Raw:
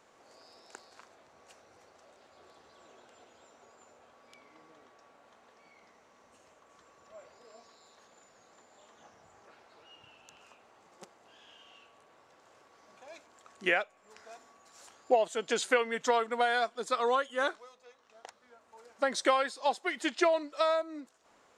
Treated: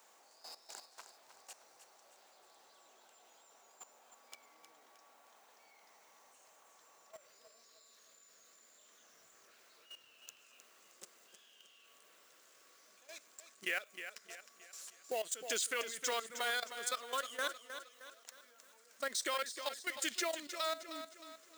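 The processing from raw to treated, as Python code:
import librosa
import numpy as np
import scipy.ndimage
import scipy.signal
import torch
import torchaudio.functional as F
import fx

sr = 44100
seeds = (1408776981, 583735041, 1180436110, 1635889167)

y = fx.law_mismatch(x, sr, coded='mu')
y = scipy.signal.sosfilt(scipy.signal.butter(2, 49.0, 'highpass', fs=sr, output='sos'), y)
y = fx.riaa(y, sr, side='recording')
y = fx.hum_notches(y, sr, base_hz=50, count=2)
y = fx.peak_eq(y, sr, hz=830.0, db=fx.steps((0.0, 5.5), (7.16, -11.0)), octaves=0.53)
y = fx.level_steps(y, sr, step_db=15)
y = fx.echo_feedback(y, sr, ms=311, feedback_pct=43, wet_db=-10.0)
y = y * librosa.db_to_amplitude(-5.5)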